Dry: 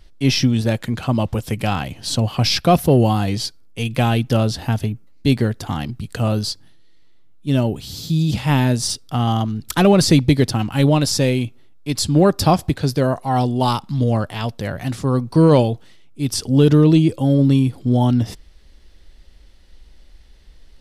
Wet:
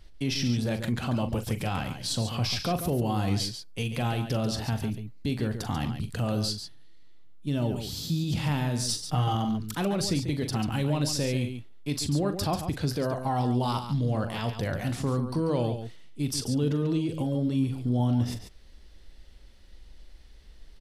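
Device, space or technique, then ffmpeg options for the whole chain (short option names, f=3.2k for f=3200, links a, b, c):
stacked limiters: -filter_complex "[0:a]alimiter=limit=-9dB:level=0:latency=1:release=209,alimiter=limit=-16dB:level=0:latency=1:release=68,asettb=1/sr,asplit=3[a][b][c];[a]atrim=end=8.884[d];[b]atrim=start=8.88:end=9.35,asetpts=PTS-STARTPTS,afade=t=in:d=0.004:c=qsin,afade=t=out:st=0.466:d=0.004:c=qsin,aecho=1:1:6.5:0.78,atrim=end_sample=20727[e];[c]atrim=start=9.346[f];[d][e]acrossfade=d=0.004:c1=hsin:c2=qsin[g];[g][f]acrossfade=d=0.004:c1=qsin:c2=hsin,aecho=1:1:41|140:0.299|0.355,volume=-4.5dB"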